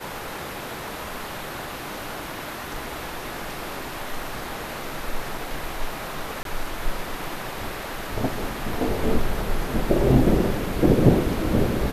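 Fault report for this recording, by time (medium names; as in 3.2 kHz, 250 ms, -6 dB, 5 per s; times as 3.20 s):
6.43–6.45 s: dropout 22 ms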